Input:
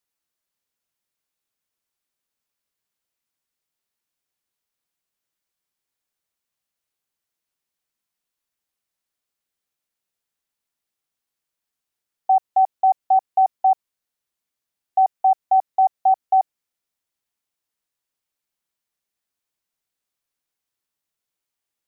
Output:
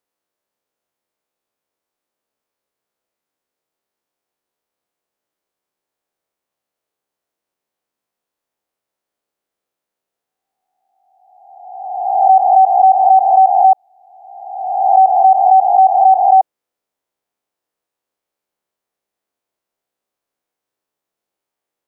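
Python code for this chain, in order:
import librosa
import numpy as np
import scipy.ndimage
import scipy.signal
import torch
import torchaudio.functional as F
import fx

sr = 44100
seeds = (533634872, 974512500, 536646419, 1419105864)

y = fx.spec_swells(x, sr, rise_s=1.44)
y = fx.peak_eq(y, sr, hz=520.0, db=14.0, octaves=2.8)
y = y * librosa.db_to_amplitude(-5.0)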